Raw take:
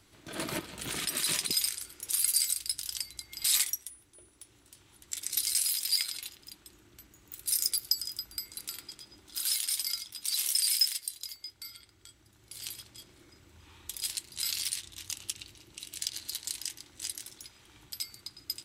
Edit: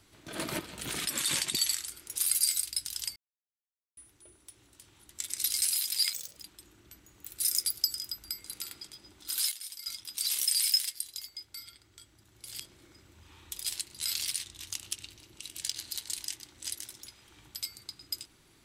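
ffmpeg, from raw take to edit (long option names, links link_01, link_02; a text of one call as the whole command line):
ffmpeg -i in.wav -filter_complex "[0:a]asplit=10[link_01][link_02][link_03][link_04][link_05][link_06][link_07][link_08][link_09][link_10];[link_01]atrim=end=1.104[link_11];[link_02]atrim=start=1.1:end=1.81,asetpts=PTS-STARTPTS,asetrate=40131,aresample=44100[link_12];[link_03]atrim=start=1.806:end=3.09,asetpts=PTS-STARTPTS,afade=type=out:start_time=1.28:duration=0.004:curve=hsin[link_13];[link_04]atrim=start=3.09:end=3.9,asetpts=PTS-STARTPTS,volume=0[link_14];[link_05]atrim=start=3.9:end=6.064,asetpts=PTS-STARTPTS,afade=type=in:duration=0.004:curve=hsin[link_15];[link_06]atrim=start=6.06:end=6.44,asetpts=PTS-STARTPTS,asetrate=71001,aresample=44100[link_16];[link_07]atrim=start=6.436:end=9.592[link_17];[link_08]atrim=start=9.588:end=9.942,asetpts=PTS-STARTPTS,volume=-11dB[link_18];[link_09]atrim=start=9.938:end=12.672[link_19];[link_10]atrim=start=12.968[link_20];[link_11][link_12]acrossfade=duration=0.004:curve1=hsin:curve2=hsin[link_21];[link_13][link_14][link_15]concat=n=3:v=0:a=1[link_22];[link_21][link_22]acrossfade=duration=0.004:curve1=hsin:curve2=hsin[link_23];[link_23][link_16]acrossfade=duration=0.004:curve1=hsin:curve2=hsin[link_24];[link_24][link_17]acrossfade=duration=0.004:curve1=hsin:curve2=hsin[link_25];[link_25][link_18]acrossfade=duration=0.004:curve1=hsin:curve2=hsin[link_26];[link_26][link_19]acrossfade=duration=0.004:curve1=hsin:curve2=hsin[link_27];[link_27][link_20]acrossfade=duration=0.004:curve1=hsin:curve2=hsin" out.wav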